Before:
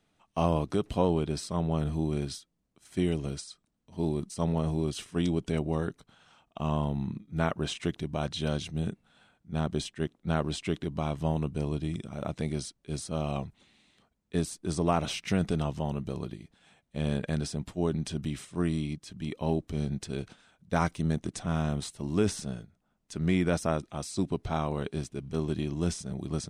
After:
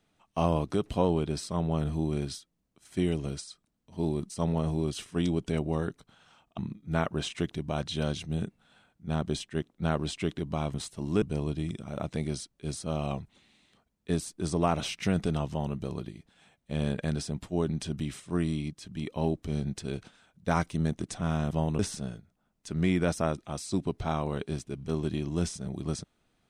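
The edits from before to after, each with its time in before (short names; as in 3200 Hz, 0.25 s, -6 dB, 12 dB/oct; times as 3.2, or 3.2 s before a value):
6.58–7.03 cut
11.19–11.47 swap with 21.76–22.24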